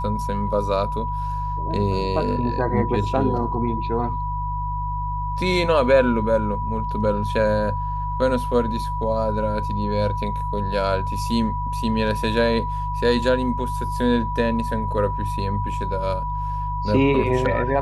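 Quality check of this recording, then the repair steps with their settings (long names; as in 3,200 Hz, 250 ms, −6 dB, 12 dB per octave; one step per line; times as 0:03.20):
mains hum 50 Hz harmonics 3 −28 dBFS
whistle 980 Hz −26 dBFS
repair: hum removal 50 Hz, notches 3
notch filter 980 Hz, Q 30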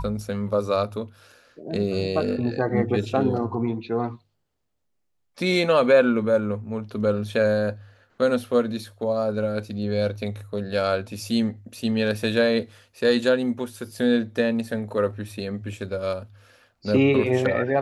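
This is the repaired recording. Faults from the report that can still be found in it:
none of them is left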